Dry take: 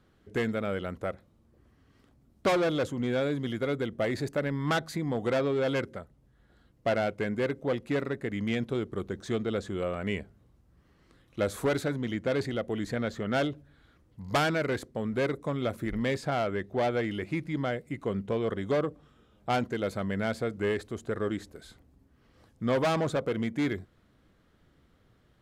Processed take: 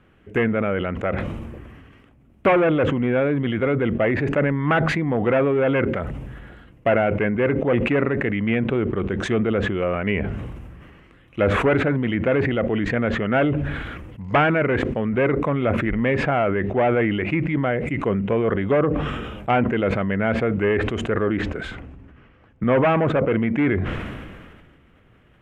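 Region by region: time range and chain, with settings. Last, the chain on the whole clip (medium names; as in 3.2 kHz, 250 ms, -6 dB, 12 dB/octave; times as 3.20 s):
21.42–22.64 s: low-pass 5.4 kHz + peaking EQ 1.4 kHz +3.5 dB 0.35 oct + three bands expanded up and down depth 40%
whole clip: resonant high shelf 3.4 kHz -8 dB, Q 3; low-pass that closes with the level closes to 2 kHz, closed at -26 dBFS; decay stretcher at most 32 dB/s; trim +8 dB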